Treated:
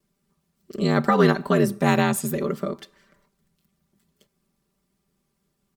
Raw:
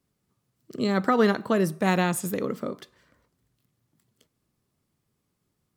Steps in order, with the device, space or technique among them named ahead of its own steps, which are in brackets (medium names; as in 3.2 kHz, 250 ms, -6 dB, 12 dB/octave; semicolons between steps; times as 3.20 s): ring-modulated robot voice (ring modulator 43 Hz; comb 5.1 ms, depth 88%); trim +3.5 dB